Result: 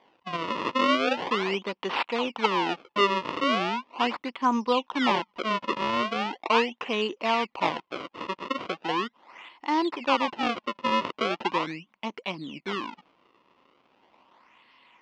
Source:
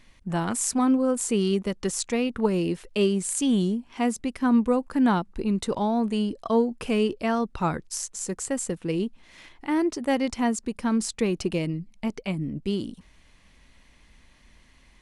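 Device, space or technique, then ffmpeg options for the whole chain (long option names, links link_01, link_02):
circuit-bent sampling toy: -af "acrusher=samples=32:mix=1:aa=0.000001:lfo=1:lforange=51.2:lforate=0.39,highpass=430,equalizer=frequency=430:width_type=q:width=4:gain=-4,equalizer=frequency=630:width_type=q:width=4:gain=-4,equalizer=frequency=1000:width_type=q:width=4:gain=8,equalizer=frequency=1600:width_type=q:width=4:gain=-6,equalizer=frequency=2800:width_type=q:width=4:gain=5,equalizer=frequency=4000:width_type=q:width=4:gain=-4,lowpass=frequency=4300:width=0.5412,lowpass=frequency=4300:width=1.3066,volume=3dB"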